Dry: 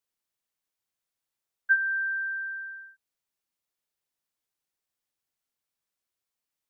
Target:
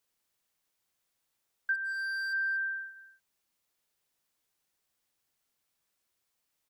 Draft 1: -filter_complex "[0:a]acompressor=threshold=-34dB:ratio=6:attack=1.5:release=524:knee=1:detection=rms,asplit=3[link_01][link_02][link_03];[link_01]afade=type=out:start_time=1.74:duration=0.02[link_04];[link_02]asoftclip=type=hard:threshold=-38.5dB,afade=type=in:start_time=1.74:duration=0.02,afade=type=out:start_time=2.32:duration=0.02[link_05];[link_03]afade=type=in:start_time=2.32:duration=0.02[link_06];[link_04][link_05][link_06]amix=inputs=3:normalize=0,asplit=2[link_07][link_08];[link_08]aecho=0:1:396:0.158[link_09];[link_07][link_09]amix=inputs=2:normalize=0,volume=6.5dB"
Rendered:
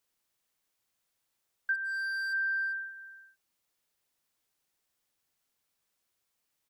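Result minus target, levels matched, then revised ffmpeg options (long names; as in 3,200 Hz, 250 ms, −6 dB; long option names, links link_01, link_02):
echo 162 ms late
-filter_complex "[0:a]acompressor=threshold=-34dB:ratio=6:attack=1.5:release=524:knee=1:detection=rms,asplit=3[link_01][link_02][link_03];[link_01]afade=type=out:start_time=1.74:duration=0.02[link_04];[link_02]asoftclip=type=hard:threshold=-38.5dB,afade=type=in:start_time=1.74:duration=0.02,afade=type=out:start_time=2.32:duration=0.02[link_05];[link_03]afade=type=in:start_time=2.32:duration=0.02[link_06];[link_04][link_05][link_06]amix=inputs=3:normalize=0,asplit=2[link_07][link_08];[link_08]aecho=0:1:234:0.158[link_09];[link_07][link_09]amix=inputs=2:normalize=0,volume=6.5dB"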